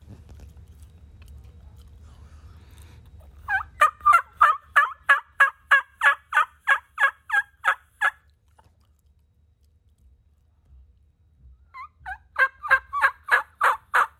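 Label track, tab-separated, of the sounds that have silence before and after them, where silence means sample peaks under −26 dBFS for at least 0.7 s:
3.490000	8.090000	sound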